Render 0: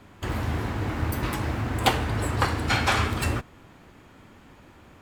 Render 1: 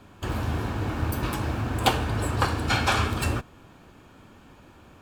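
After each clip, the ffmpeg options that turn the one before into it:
-af "bandreject=f=2000:w=6.6"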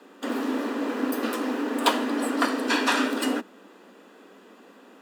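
-af "afreqshift=180"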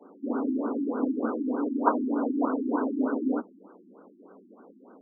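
-af "afftfilt=real='re*lt(b*sr/1024,350*pow(1600/350,0.5+0.5*sin(2*PI*3.3*pts/sr)))':imag='im*lt(b*sr/1024,350*pow(1600/350,0.5+0.5*sin(2*PI*3.3*pts/sr)))':win_size=1024:overlap=0.75"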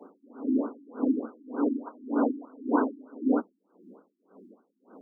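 -af "aeval=exprs='val(0)*pow(10,-29*(0.5-0.5*cos(2*PI*1.8*n/s))/20)':c=same,volume=1.68"

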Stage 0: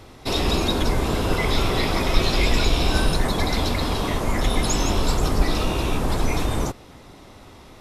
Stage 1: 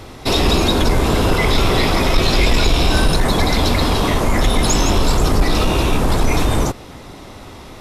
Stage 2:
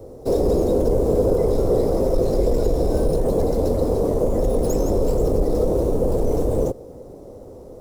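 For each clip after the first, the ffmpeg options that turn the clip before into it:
-filter_complex "[0:a]asplit=2[s0][s1];[s1]alimiter=limit=0.188:level=0:latency=1:release=146,volume=0.891[s2];[s0][s2]amix=inputs=2:normalize=0,acontrast=61,volume=0.708"
-filter_complex "[0:a]acrossover=split=250|5500[s0][s1][s2];[s1]lowpass=f=500:t=q:w=4.9[s3];[s2]aeval=exprs='max(val(0),0)':c=same[s4];[s0][s3][s4]amix=inputs=3:normalize=0,volume=0.473"

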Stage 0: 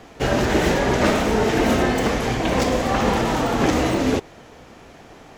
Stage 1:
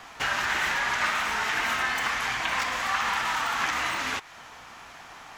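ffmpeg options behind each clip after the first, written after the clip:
-filter_complex "[0:a]lowshelf=f=690:t=q:w=1.5:g=-13,acrossover=split=1200|2700[s0][s1][s2];[s0]acompressor=threshold=0.00891:ratio=4[s3];[s1]acompressor=threshold=0.0447:ratio=4[s4];[s2]acompressor=threshold=0.01:ratio=4[s5];[s3][s4][s5]amix=inputs=3:normalize=0,volume=1.33"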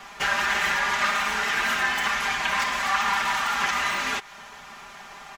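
-af "aecho=1:1:5:0.92"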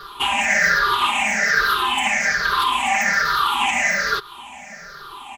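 -af "afftfilt=real='re*pow(10,23/40*sin(2*PI*(0.6*log(max(b,1)*sr/1024/100)/log(2)-(-1.2)*(pts-256)/sr)))':imag='im*pow(10,23/40*sin(2*PI*(0.6*log(max(b,1)*sr/1024/100)/log(2)-(-1.2)*(pts-256)/sr)))':win_size=1024:overlap=0.75"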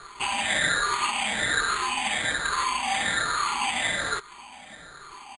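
-af "acrusher=samples=8:mix=1:aa=0.000001,aresample=22050,aresample=44100,volume=0.447"

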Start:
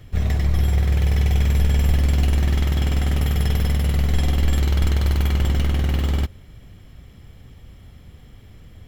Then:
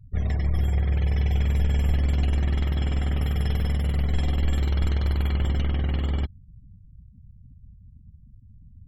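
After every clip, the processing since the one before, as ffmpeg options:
-af "afftfilt=real='re*gte(hypot(re,im),0.0178)':imag='im*gte(hypot(re,im),0.0178)':win_size=1024:overlap=0.75,highshelf=f=8300:g=-9,volume=0.596"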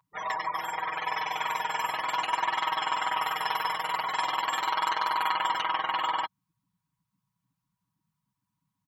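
-af "highpass=f=1000:t=q:w=12,aecho=1:1:6.3:0.87,volume=1.41"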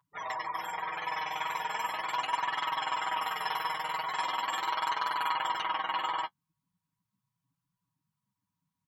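-af "flanger=delay=6.9:depth=5.9:regen=-25:speed=0.39:shape=sinusoidal"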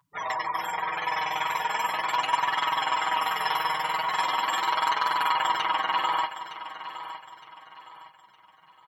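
-af "aecho=1:1:913|1826|2739|3652:0.237|0.083|0.029|0.0102,volume=2"

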